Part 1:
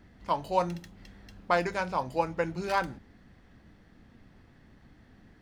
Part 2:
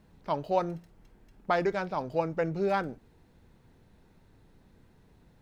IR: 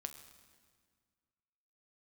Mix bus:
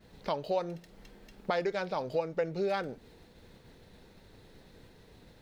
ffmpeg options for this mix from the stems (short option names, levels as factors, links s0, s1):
-filter_complex "[0:a]volume=0.335[s0];[1:a]highshelf=f=5000:g=6.5,agate=range=0.0224:threshold=0.00141:ratio=3:detection=peak,equalizer=f=500:t=o:w=1:g=8,equalizer=f=2000:t=o:w=1:g=4,equalizer=f=4000:t=o:w=1:g=9,volume=1.33[s1];[s0][s1]amix=inputs=2:normalize=0,acompressor=threshold=0.02:ratio=2.5"